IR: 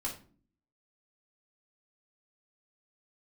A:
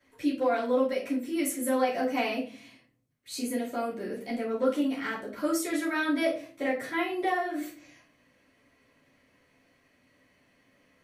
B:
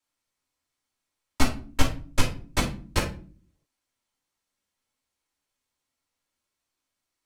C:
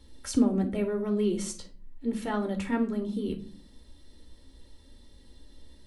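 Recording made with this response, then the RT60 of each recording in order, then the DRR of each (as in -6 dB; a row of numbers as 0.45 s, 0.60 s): B; 0.45 s, 0.45 s, 0.45 s; -12.0 dB, -3.5 dB, 3.5 dB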